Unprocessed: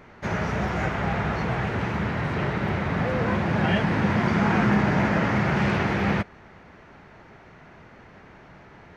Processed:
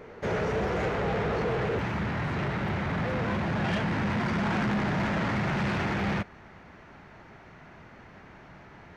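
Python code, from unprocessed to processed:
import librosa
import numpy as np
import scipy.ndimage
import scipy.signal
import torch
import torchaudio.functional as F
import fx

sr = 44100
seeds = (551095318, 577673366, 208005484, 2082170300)

y = fx.peak_eq(x, sr, hz=460.0, db=fx.steps((0.0, 13.0), (1.79, -2.5)), octaves=0.55)
y = 10.0 ** (-23.0 / 20.0) * np.tanh(y / 10.0 ** (-23.0 / 20.0))
y = y * librosa.db_to_amplitude(-1.0)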